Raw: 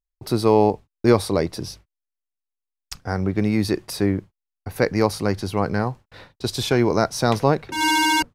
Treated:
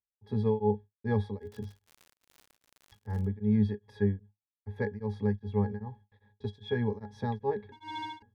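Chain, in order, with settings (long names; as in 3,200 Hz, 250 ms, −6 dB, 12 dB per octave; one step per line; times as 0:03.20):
parametric band 2,400 Hz +5.5 dB 1.7 octaves
resonances in every octave G#, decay 0.13 s
0:01.38–0:03.25: surface crackle 86 per second −40 dBFS
tremolo along a rectified sine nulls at 2.5 Hz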